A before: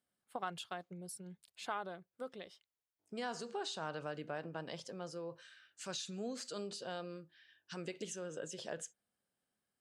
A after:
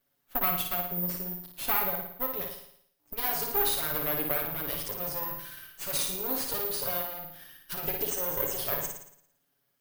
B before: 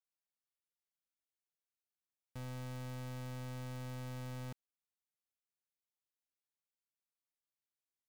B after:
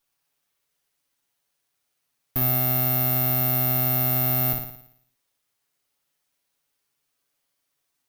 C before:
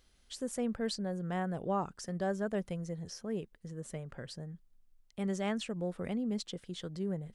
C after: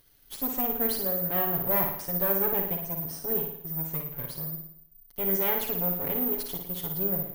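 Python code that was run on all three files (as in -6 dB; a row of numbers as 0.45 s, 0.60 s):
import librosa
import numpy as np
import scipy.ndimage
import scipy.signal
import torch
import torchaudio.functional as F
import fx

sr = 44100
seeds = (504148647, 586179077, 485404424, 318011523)

y = fx.lower_of_two(x, sr, delay_ms=7.1)
y = fx.room_flutter(y, sr, wall_m=9.7, rt60_s=0.67)
y = (np.kron(scipy.signal.resample_poly(y, 1, 3), np.eye(3)[0]) * 3)[:len(y)]
y = librosa.util.normalize(y) * 10.0 ** (-9 / 20.0)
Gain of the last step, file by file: +10.0 dB, +17.5 dB, +2.5 dB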